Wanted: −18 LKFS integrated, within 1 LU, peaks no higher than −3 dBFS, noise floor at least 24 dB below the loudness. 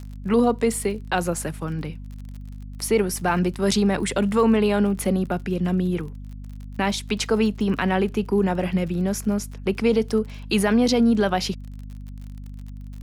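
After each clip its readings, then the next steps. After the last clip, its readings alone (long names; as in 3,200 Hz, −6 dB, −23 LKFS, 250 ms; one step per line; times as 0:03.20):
crackle rate 43 per second; mains hum 50 Hz; hum harmonics up to 250 Hz; level of the hum −34 dBFS; integrated loudness −22.5 LKFS; sample peak −9.0 dBFS; target loudness −18.0 LKFS
→ click removal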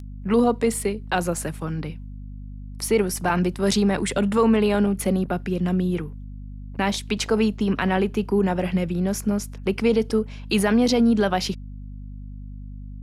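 crackle rate 0.31 per second; mains hum 50 Hz; hum harmonics up to 250 Hz; level of the hum −34 dBFS
→ mains-hum notches 50/100/150/200/250 Hz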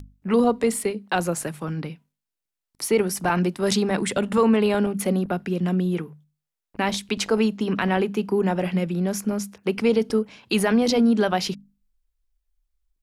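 mains hum none found; integrated loudness −23.0 LKFS; sample peak −9.0 dBFS; target loudness −18.0 LKFS
→ level +5 dB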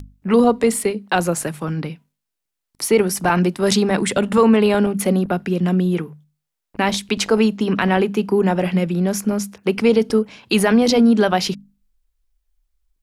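integrated loudness −18.0 LKFS; sample peak −4.0 dBFS; background noise floor −81 dBFS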